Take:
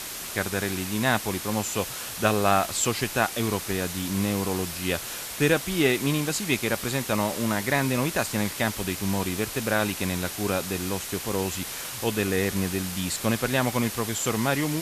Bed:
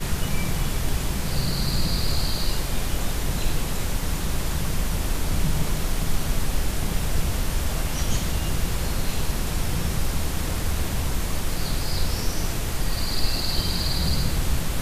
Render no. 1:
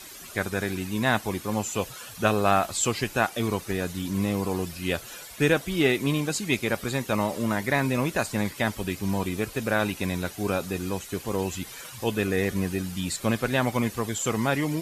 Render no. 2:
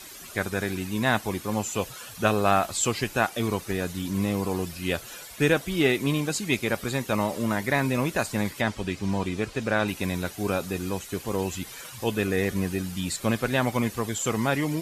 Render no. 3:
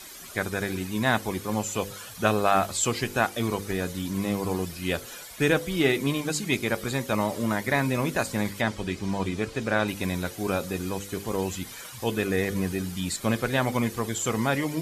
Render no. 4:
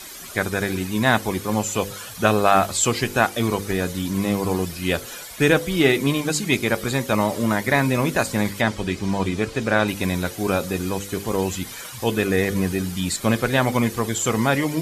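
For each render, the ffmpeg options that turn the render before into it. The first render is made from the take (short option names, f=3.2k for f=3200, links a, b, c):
-af "afftdn=nr=12:nf=-36"
-filter_complex "[0:a]asettb=1/sr,asplit=3[a][b][c];[a]atrim=end=8.614[d];[b]atrim=start=8.61:end=9.88,asetpts=PTS-STARTPTS,afade=t=in:d=0.004:c=qsin,afade=t=out:st=1.266:d=0.004:c=qsin,lowpass=7k[e];[c]atrim=start=9.876[f];[d][e]acrossfade=d=0.004:c1=hsin:c2=qsin[g];[g][f]acrossfade=d=0.004:c1=qsin:c2=hsin"
-af "bandreject=f=2.7k:w=21,bandreject=f=49.88:t=h:w=4,bandreject=f=99.76:t=h:w=4,bandreject=f=149.64:t=h:w=4,bandreject=f=199.52:t=h:w=4,bandreject=f=249.4:t=h:w=4,bandreject=f=299.28:t=h:w=4,bandreject=f=349.16:t=h:w=4,bandreject=f=399.04:t=h:w=4,bandreject=f=448.92:t=h:w=4,bandreject=f=498.8:t=h:w=4,bandreject=f=548.68:t=h:w=4"
-af "volume=5.5dB,alimiter=limit=-2dB:level=0:latency=1"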